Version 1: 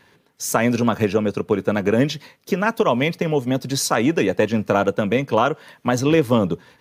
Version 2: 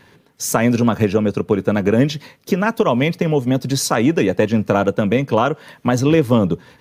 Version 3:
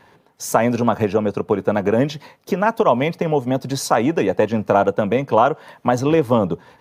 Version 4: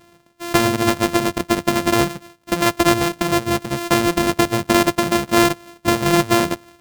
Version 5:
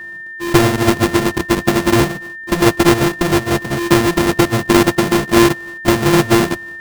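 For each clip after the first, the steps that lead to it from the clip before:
low-shelf EQ 310 Hz +5.5 dB; in parallel at −1.5 dB: downward compressor, threshold −24 dBFS, peak gain reduction 14.5 dB; on the sum: level −1.5 dB
parametric band 790 Hz +10.5 dB 1.4 octaves; level −5.5 dB
samples sorted by size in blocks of 128 samples
each half-wave held at its own peak; steady tone 1,800 Hz −27 dBFS; level −1 dB

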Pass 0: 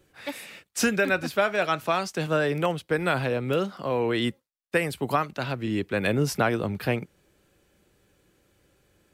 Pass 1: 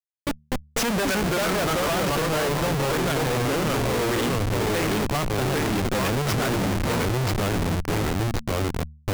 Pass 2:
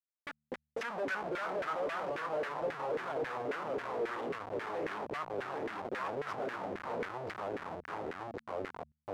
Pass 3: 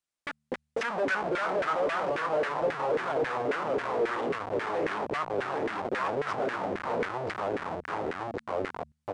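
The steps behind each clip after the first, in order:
delay with pitch and tempo change per echo 213 ms, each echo −2 semitones, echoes 2; comparator with hysteresis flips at −29.5 dBFS; hum removal 75.15 Hz, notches 3; level +2 dB
auto-filter band-pass saw down 3.7 Hz 410–1,900 Hz; level −5.5 dB
downsampling to 22,050 Hz; level +7.5 dB

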